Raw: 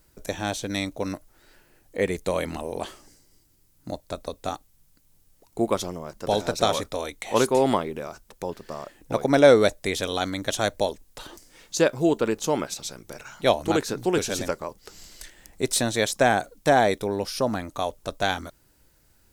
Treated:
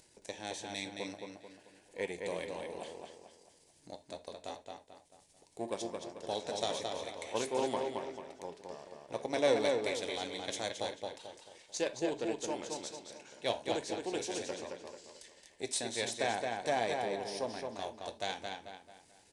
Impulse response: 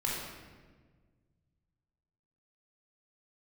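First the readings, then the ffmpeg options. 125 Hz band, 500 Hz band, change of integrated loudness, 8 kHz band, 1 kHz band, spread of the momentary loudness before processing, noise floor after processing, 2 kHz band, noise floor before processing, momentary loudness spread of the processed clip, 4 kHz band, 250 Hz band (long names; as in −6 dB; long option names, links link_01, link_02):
−18.5 dB, −12.0 dB, −12.5 dB, −10.0 dB, −12.0 dB, 18 LU, −65 dBFS, −12.0 dB, −62 dBFS, 17 LU, −9.0 dB, −14.5 dB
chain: -filter_complex "[0:a]aeval=exprs='if(lt(val(0),0),0.447*val(0),val(0))':channel_layout=same,aresample=22050,aresample=44100,highpass=frequency=510:poles=1,equalizer=frequency=1300:width_type=o:width=0.44:gain=-14.5,acompressor=mode=upward:threshold=-45dB:ratio=2.5,asplit=2[link_01][link_02];[link_02]adelay=220,lowpass=frequency=4600:poles=1,volume=-3.5dB,asplit=2[link_03][link_04];[link_04]adelay=220,lowpass=frequency=4600:poles=1,volume=0.41,asplit=2[link_05][link_06];[link_06]adelay=220,lowpass=frequency=4600:poles=1,volume=0.41,asplit=2[link_07][link_08];[link_08]adelay=220,lowpass=frequency=4600:poles=1,volume=0.41,asplit=2[link_09][link_10];[link_10]adelay=220,lowpass=frequency=4600:poles=1,volume=0.41[link_11];[link_01][link_03][link_05][link_07][link_09][link_11]amix=inputs=6:normalize=0,asplit=2[link_12][link_13];[1:a]atrim=start_sample=2205,afade=type=out:start_time=0.13:duration=0.01,atrim=end_sample=6174[link_14];[link_13][link_14]afir=irnorm=-1:irlink=0,volume=-15dB[link_15];[link_12][link_15]amix=inputs=2:normalize=0,flanger=delay=8.2:depth=3.2:regen=-70:speed=0.66:shape=triangular,volume=-5dB"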